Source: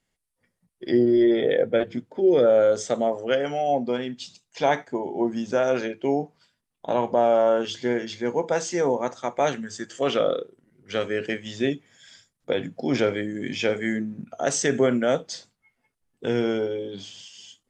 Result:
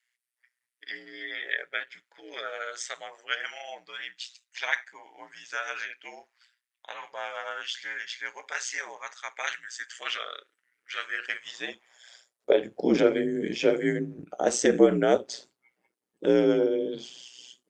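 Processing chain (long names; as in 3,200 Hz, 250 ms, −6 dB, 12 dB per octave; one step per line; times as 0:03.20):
high-pass filter sweep 1,800 Hz → 330 Hz, 0:10.90–0:12.95
ring modulation 61 Hz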